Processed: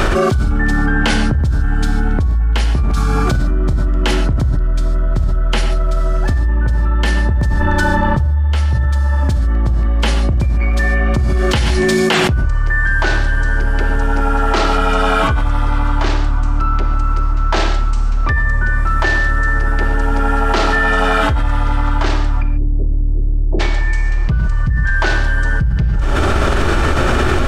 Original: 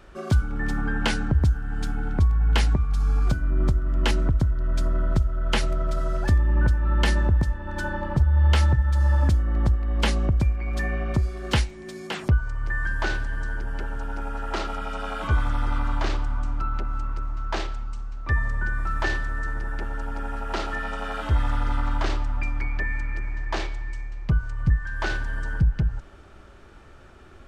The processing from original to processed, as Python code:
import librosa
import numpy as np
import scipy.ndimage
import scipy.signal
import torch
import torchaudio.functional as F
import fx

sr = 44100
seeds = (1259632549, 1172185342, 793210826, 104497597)

y = fx.cheby2_lowpass(x, sr, hz=1600.0, order=4, stop_db=60, at=(22.41, 23.59), fade=0.02)
y = fx.rev_gated(y, sr, seeds[0], gate_ms=170, shape='flat', drr_db=6.5)
y = fx.env_flatten(y, sr, amount_pct=100)
y = y * librosa.db_to_amplitude(-2.0)